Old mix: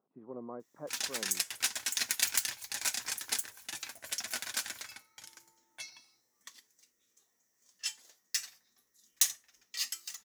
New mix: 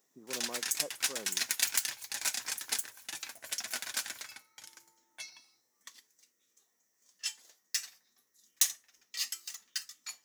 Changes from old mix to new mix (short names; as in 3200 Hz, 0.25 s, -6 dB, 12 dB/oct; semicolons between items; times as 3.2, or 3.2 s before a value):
background: entry -0.60 s; master: add low shelf 120 Hz -8.5 dB